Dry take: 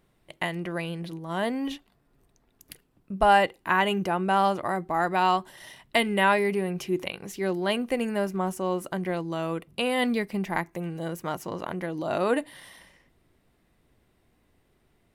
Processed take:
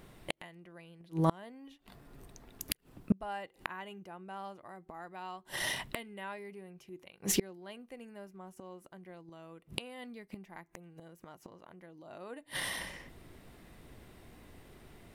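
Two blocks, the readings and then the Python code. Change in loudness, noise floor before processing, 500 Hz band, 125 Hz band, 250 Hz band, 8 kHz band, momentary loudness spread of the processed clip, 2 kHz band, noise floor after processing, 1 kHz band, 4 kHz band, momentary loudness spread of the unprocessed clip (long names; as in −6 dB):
−12.5 dB, −68 dBFS, −16.5 dB, −7.5 dB, −11.5 dB, +2.5 dB, 23 LU, −13.5 dB, −67 dBFS, −18.0 dB, −8.5 dB, 12 LU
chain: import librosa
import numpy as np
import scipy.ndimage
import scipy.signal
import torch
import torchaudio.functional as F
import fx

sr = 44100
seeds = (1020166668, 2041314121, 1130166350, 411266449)

y = fx.gate_flip(x, sr, shuts_db=-27.0, range_db=-33)
y = y * librosa.db_to_amplitude(11.5)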